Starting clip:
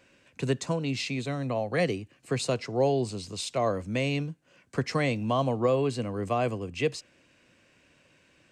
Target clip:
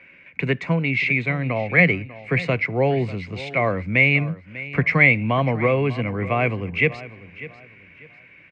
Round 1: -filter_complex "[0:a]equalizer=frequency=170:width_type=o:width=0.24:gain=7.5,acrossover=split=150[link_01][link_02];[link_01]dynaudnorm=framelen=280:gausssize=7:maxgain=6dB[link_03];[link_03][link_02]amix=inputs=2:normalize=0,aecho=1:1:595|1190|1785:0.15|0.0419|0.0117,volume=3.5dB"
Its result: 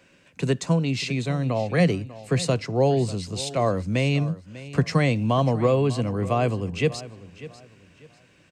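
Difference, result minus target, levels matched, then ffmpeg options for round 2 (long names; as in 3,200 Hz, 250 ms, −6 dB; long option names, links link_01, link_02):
2,000 Hz band −10.5 dB
-filter_complex "[0:a]lowpass=frequency=2200:width_type=q:width=11,equalizer=frequency=170:width_type=o:width=0.24:gain=7.5,acrossover=split=150[link_01][link_02];[link_01]dynaudnorm=framelen=280:gausssize=7:maxgain=6dB[link_03];[link_03][link_02]amix=inputs=2:normalize=0,aecho=1:1:595|1190|1785:0.15|0.0419|0.0117,volume=3.5dB"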